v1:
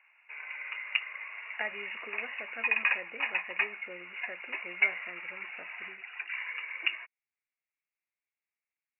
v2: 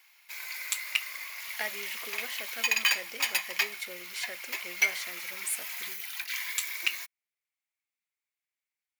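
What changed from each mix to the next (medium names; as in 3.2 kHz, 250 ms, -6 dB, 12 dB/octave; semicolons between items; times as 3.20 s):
master: remove brick-wall FIR low-pass 2.9 kHz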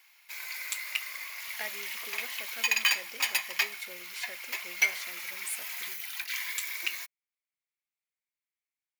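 speech -4.0 dB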